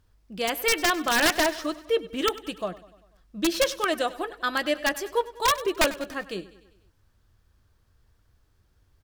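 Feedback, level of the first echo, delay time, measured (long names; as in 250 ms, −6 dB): 58%, −18.0 dB, 98 ms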